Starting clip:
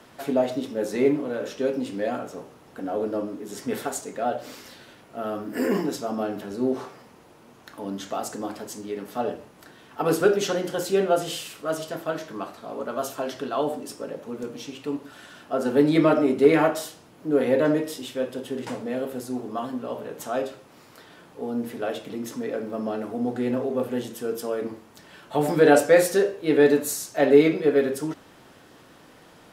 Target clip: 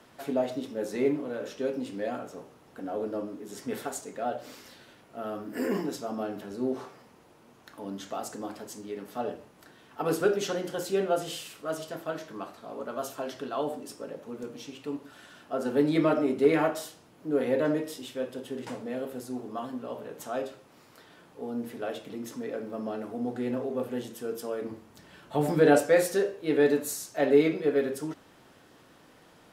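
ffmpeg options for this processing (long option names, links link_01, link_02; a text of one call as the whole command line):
ffmpeg -i in.wav -filter_complex "[0:a]asettb=1/sr,asplit=3[link_01][link_02][link_03];[link_01]atrim=end=24.684[link_04];[link_02]atrim=start=24.68:end=25.78,asetpts=PTS-STARTPTS,afade=type=in:duration=0.004:curve=qsin,afade=type=out:start_time=1.096:duration=0.004:curve=qsin,lowshelf=frequency=210:gain=7.5[link_05];[link_03]atrim=start=25.776[link_06];[link_04][link_05]acrossfade=duration=0.004:curve1=hsin:curve2=qsin[link_07];[link_07][link_06]acrossfade=duration=0.004:curve1=qsin:curve2=hsin,volume=-5.5dB" out.wav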